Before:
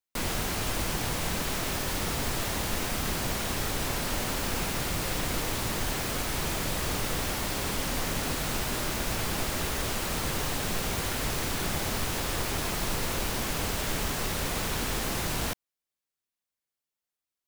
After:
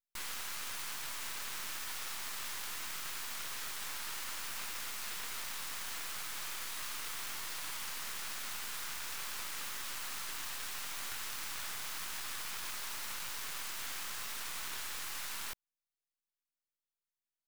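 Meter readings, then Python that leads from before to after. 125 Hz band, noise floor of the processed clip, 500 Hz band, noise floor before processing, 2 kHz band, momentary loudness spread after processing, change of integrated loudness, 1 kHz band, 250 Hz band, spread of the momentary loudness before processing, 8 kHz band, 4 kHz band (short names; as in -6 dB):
-28.5 dB, under -85 dBFS, -23.0 dB, under -85 dBFS, -9.0 dB, 0 LU, -9.5 dB, -12.5 dB, -26.0 dB, 0 LU, -8.0 dB, -8.5 dB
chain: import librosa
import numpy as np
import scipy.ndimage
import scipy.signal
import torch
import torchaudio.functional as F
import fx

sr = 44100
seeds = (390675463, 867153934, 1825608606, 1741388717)

y = scipy.signal.sosfilt(scipy.signal.cheby2(4, 40, 500.0, 'highpass', fs=sr, output='sos'), x)
y = np.maximum(y, 0.0)
y = F.gain(torch.from_numpy(y), -3.5).numpy()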